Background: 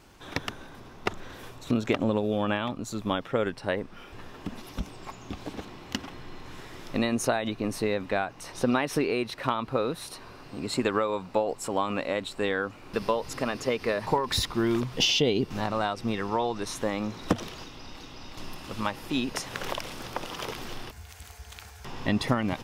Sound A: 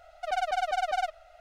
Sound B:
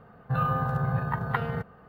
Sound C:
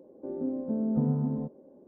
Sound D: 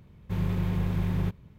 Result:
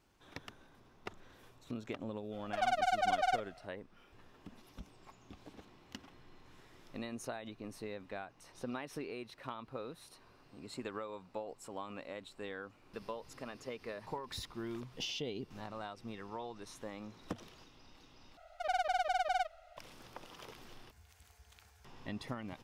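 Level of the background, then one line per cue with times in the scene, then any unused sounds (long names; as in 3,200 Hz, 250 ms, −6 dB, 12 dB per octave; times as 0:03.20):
background −16.5 dB
0:02.30: mix in A −3 dB, fades 0.05 s
0:18.37: overwrite with A −4.5 dB
not used: B, C, D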